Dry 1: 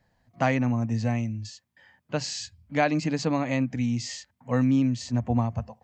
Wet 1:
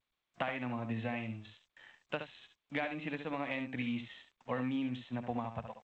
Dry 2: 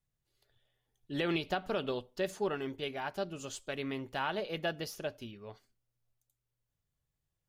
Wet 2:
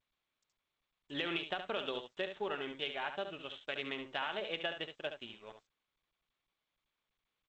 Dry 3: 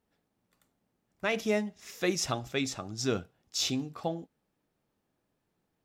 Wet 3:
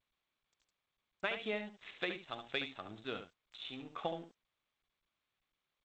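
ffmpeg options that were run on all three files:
-af "aemphasis=mode=production:type=riaa,acompressor=threshold=-33dB:ratio=16,aresample=8000,aeval=exprs='sgn(val(0))*max(abs(val(0))-0.00119,0)':channel_layout=same,aresample=44100,aecho=1:1:71:0.376,volume=1dB" -ar 16000 -c:a g722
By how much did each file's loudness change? −11.5, −3.0, −9.0 LU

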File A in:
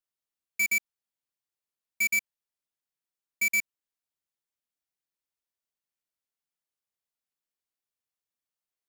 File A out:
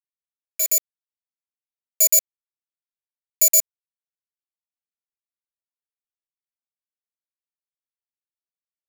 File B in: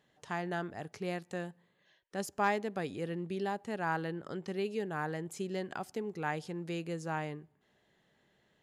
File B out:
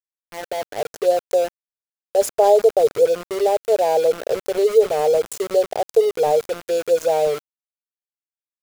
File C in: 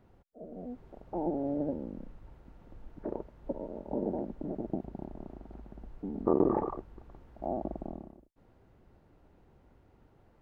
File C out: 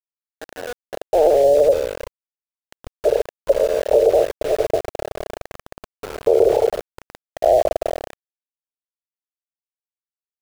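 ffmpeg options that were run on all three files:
-af "dynaudnorm=framelen=110:gausssize=13:maxgain=13.5dB,firequalizer=gain_entry='entry(120,0);entry(190,-30);entry(310,-13);entry(440,14);entry(640,13);entry(1100,-16);entry(1500,-25);entry(2300,-27);entry(3500,-2);entry(6600,6)':delay=0.05:min_phase=1,aeval=exprs='val(0)*gte(abs(val(0)),0.0596)':channel_layout=same,alimiter=level_in=2dB:limit=-1dB:release=50:level=0:latency=1,volume=-3.5dB"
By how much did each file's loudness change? +9.5, +18.0, +17.5 LU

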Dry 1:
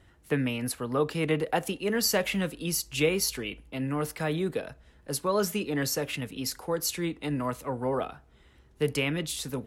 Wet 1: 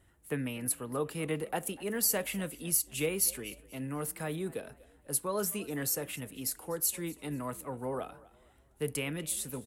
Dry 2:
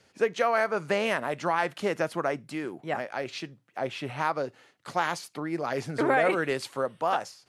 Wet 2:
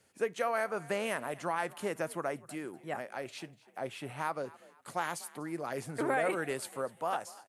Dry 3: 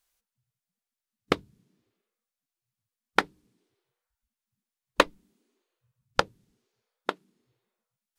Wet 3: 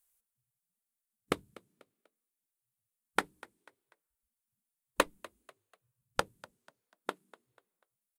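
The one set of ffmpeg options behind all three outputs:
-filter_complex "[0:a]highshelf=frequency=7000:width_type=q:width=1.5:gain=9,asplit=2[link_01][link_02];[link_02]asplit=3[link_03][link_04][link_05];[link_03]adelay=245,afreqshift=48,volume=-21dB[link_06];[link_04]adelay=490,afreqshift=96,volume=-29.9dB[link_07];[link_05]adelay=735,afreqshift=144,volume=-38.7dB[link_08];[link_06][link_07][link_08]amix=inputs=3:normalize=0[link_09];[link_01][link_09]amix=inputs=2:normalize=0,volume=-7dB"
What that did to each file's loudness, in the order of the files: −4.0, −7.0, −7.5 LU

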